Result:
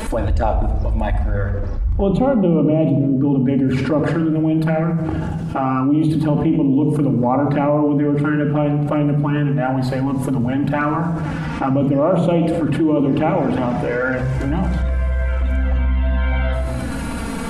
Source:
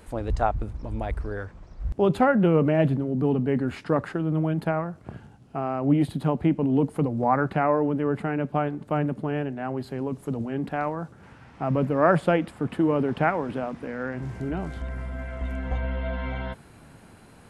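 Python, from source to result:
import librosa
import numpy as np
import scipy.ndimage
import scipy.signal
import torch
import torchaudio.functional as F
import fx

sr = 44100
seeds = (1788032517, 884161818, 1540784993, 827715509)

y = fx.high_shelf(x, sr, hz=2600.0, db=-8.0, at=(1.22, 3.45))
y = fx.env_flanger(y, sr, rest_ms=4.9, full_db=-19.5)
y = fx.room_shoebox(y, sr, seeds[0], volume_m3=3000.0, walls='furnished', distance_m=2.4)
y = fx.env_flatten(y, sr, amount_pct=70)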